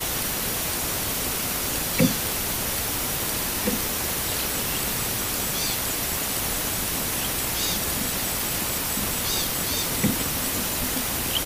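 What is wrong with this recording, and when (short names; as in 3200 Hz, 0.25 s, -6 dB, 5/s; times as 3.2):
9.83 gap 2.5 ms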